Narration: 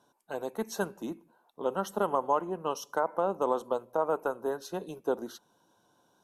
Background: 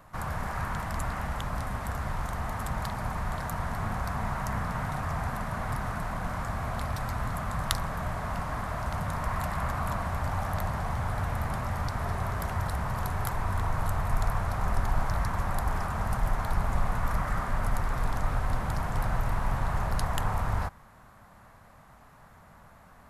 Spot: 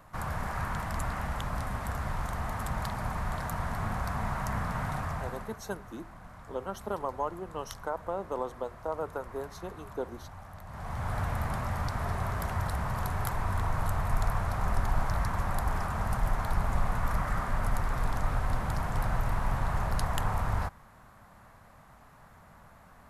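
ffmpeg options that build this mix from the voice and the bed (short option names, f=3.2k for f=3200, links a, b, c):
-filter_complex "[0:a]adelay=4900,volume=-5.5dB[a];[1:a]volume=14dB,afade=t=out:st=4.96:d=0.64:silence=0.177828,afade=t=in:st=10.66:d=0.5:silence=0.177828[b];[a][b]amix=inputs=2:normalize=0"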